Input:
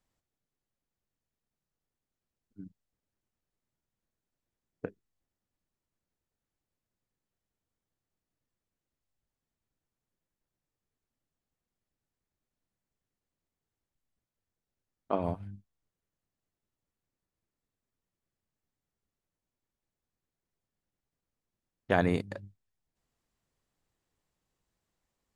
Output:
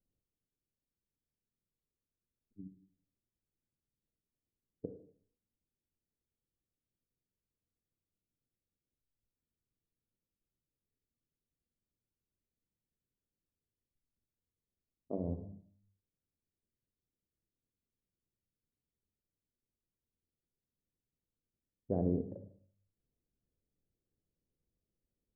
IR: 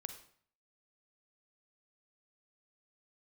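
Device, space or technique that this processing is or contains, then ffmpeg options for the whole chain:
next room: -filter_complex "[0:a]lowpass=f=510:w=0.5412,lowpass=f=510:w=1.3066[a];[1:a]atrim=start_sample=2205[b];[a][b]afir=irnorm=-1:irlink=0"

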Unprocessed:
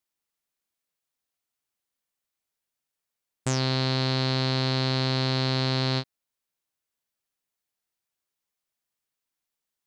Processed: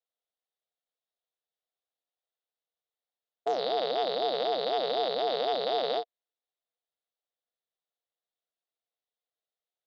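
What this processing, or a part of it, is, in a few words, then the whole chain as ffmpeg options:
voice changer toy: -af "aeval=exprs='val(0)*sin(2*PI*440*n/s+440*0.35/4*sin(2*PI*4*n/s))':c=same,highpass=460,equalizer=f=480:t=q:w=4:g=10,equalizer=f=700:t=q:w=4:g=9,equalizer=f=1k:t=q:w=4:g=-5,equalizer=f=1.6k:t=q:w=4:g=-4,equalizer=f=2.4k:t=q:w=4:g=-9,equalizer=f=3.7k:t=q:w=4:g=6,lowpass=f=4k:w=0.5412,lowpass=f=4k:w=1.3066,volume=-3.5dB"

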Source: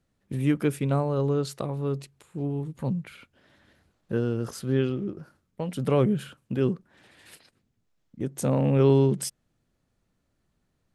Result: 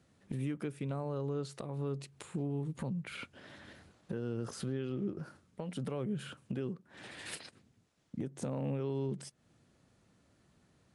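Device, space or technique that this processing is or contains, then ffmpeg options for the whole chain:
podcast mastering chain: -af "highpass=79,deesser=0.95,acompressor=threshold=-39dB:ratio=3,alimiter=level_in=11dB:limit=-24dB:level=0:latency=1:release=411,volume=-11dB,volume=8dB" -ar 24000 -c:a libmp3lame -b:a 112k

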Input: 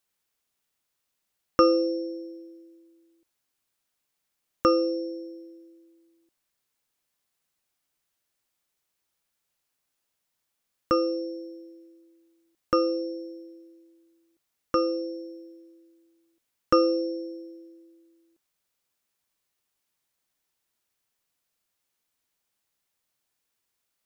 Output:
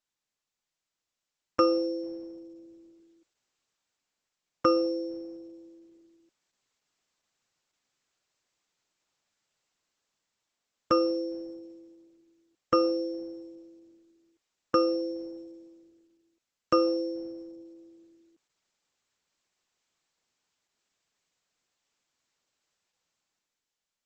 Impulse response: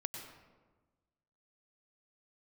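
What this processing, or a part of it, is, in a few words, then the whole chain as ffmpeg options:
video call: -af "highpass=100,dynaudnorm=f=170:g=11:m=12dB,volume=-8.5dB" -ar 48000 -c:a libopus -b:a 12k

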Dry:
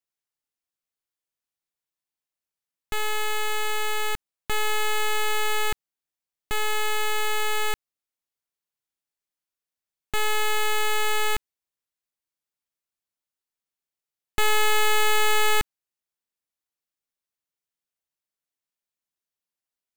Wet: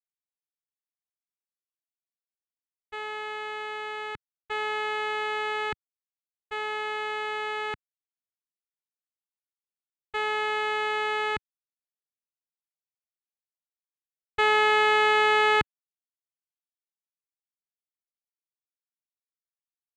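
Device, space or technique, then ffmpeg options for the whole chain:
hearing-loss simulation: -af "lowpass=2.6k,agate=range=-33dB:threshold=-19dB:ratio=3:detection=peak,highpass=98,volume=5dB"

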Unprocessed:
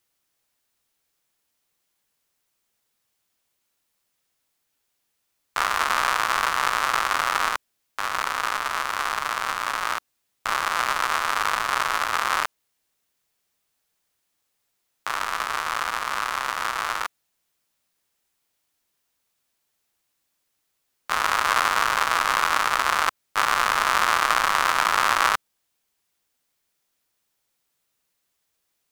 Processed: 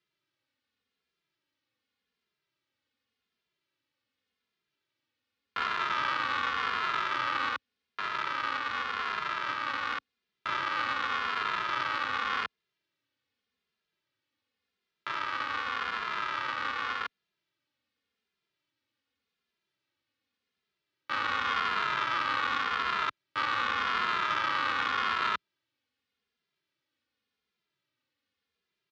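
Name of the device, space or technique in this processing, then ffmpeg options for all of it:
barber-pole flanger into a guitar amplifier: -filter_complex "[0:a]asplit=2[a][b];[b]adelay=2.5,afreqshift=-0.87[c];[a][c]amix=inputs=2:normalize=1,asoftclip=type=tanh:threshold=-20.5dB,highpass=100,equalizer=f=170:t=q:w=4:g=-4,equalizer=f=270:t=q:w=4:g=3,equalizer=f=710:t=q:w=4:g=-10,equalizer=f=1k:t=q:w=4:g=-4,lowpass=f=4.3k:w=0.5412,lowpass=f=4.3k:w=1.3066,lowshelf=f=200:g=3.5"

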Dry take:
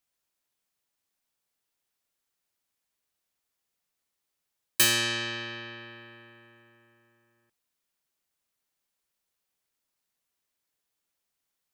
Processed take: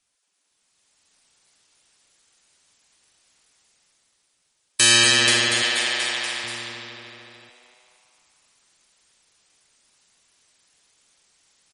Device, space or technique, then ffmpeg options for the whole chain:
low-bitrate web radio: -filter_complex "[0:a]asettb=1/sr,asplit=3[a][b][c];[a]atrim=end=5.624[d];[b]atrim=start=5.62:end=6.44,asetpts=PTS-STARTPTS,afade=t=in:d=0.004:c=qsin,afade=t=out:st=0.816:d=0.004:c=qsin,aemphasis=mode=production:type=riaa[e];[c]atrim=start=6.436[f];[d][e]acrossfade=d=0.004:c1=hsin:c2=qsin[g];[g][f]acrossfade=d=0.004:c1=qsin:c2=hsin,highshelf=f=2.5k:g=5.5,asplit=8[h][i][j][k][l][m][n][o];[i]adelay=240,afreqshift=130,volume=-10dB[p];[j]adelay=480,afreqshift=260,volume=-14.6dB[q];[k]adelay=720,afreqshift=390,volume=-19.2dB[r];[l]adelay=960,afreqshift=520,volume=-23.7dB[s];[m]adelay=1200,afreqshift=650,volume=-28.3dB[t];[n]adelay=1440,afreqshift=780,volume=-32.9dB[u];[o]adelay=1680,afreqshift=910,volume=-37.5dB[v];[h][p][q][r][s][t][u][v]amix=inputs=8:normalize=0,dynaudnorm=f=240:g=7:m=11dB,alimiter=limit=-11dB:level=0:latency=1:release=234,volume=7.5dB" -ar 48000 -c:a libmp3lame -b:a 40k

